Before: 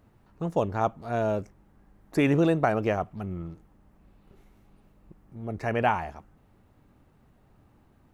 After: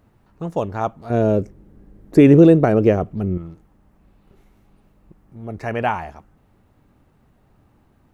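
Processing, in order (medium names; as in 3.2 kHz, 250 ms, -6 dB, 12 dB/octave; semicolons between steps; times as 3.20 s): 1.10–3.38 s: resonant low shelf 610 Hz +8.5 dB, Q 1.5; trim +3 dB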